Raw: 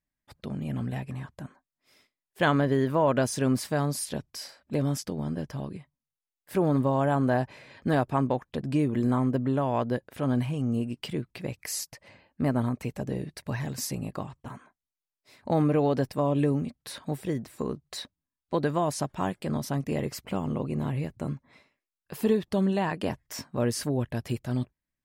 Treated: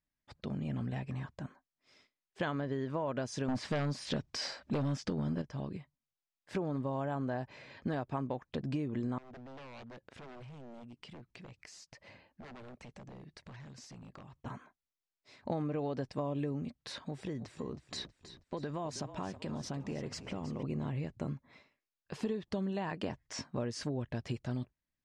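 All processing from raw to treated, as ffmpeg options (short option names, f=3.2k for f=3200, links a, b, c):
-filter_complex "[0:a]asettb=1/sr,asplit=3[a][b][c];[a]atrim=end=3.484[d];[b]atrim=start=3.48:end=5.42,asetpts=PTS-STARTPTS,afade=t=in:d=0.004:c=qsin,afade=t=out:st=1.936:d=0.004:c=qsin,acrossover=split=3700[e][f];[f]acompressor=threshold=-44dB:ratio=4:attack=1:release=60[g];[e][g]amix=inputs=2:normalize=0,aeval=exprs='0.2*sin(PI/2*2.24*val(0)/0.2)':c=same[h];[c]atrim=start=5.416[i];[d][h]acrossfade=d=0.004:c1=hsin:c2=qsin[j];[j][i]acrossfade=d=0.004:c1=qsin:c2=hsin,asettb=1/sr,asplit=3[k][l][m];[k]atrim=end=9.184[n];[l]atrim=start=9.18:end=14.39,asetpts=PTS-STARTPTS,afade=t=in:d=0.004:c=qsin,afade=t=out:st=5.206:d=0.004:c=qsin,aeval=exprs='0.0422*(abs(mod(val(0)/0.0422+3,4)-2)-1)':c=same,acompressor=threshold=-46dB:ratio=6:attack=3.2:release=140:knee=1:detection=peak[o];[m]atrim=start=14.386[p];[n][o]acrossfade=d=0.004:c1=hsin:c2=qsin[q];[q][p]acrossfade=d=0.004:c1=qsin:c2=hsin,asettb=1/sr,asplit=3[r][s][t];[r]atrim=end=17.044[u];[s]atrim=start=17.04:end=20.63,asetpts=PTS-STARTPTS,afade=t=in:d=0.004:c=qsin,afade=t=out:st=3.586:d=0.004:c=qsin,acompressor=threshold=-33dB:ratio=3:attack=3.2:release=140:knee=1:detection=peak,asplit=6[v][w][x][y][z][aa];[w]adelay=320,afreqshift=-33,volume=-13dB[ab];[x]adelay=640,afreqshift=-66,volume=-19.7dB[ac];[y]adelay=960,afreqshift=-99,volume=-26.5dB[ad];[z]adelay=1280,afreqshift=-132,volume=-33.2dB[ae];[aa]adelay=1600,afreqshift=-165,volume=-40dB[af];[v][ab][ac][ad][ae][af]amix=inputs=6:normalize=0,atrim=end_sample=158319[ag];[t]atrim=start=20.626[ah];[u][ag]acrossfade=d=0.004:c1=hsin:c2=qsin[ai];[ai][ah]acrossfade=d=0.004:c1=qsin:c2=hsin,lowpass=f=6.9k:w=0.5412,lowpass=f=6.9k:w=1.3066,acompressor=threshold=-30dB:ratio=5,volume=-2.5dB"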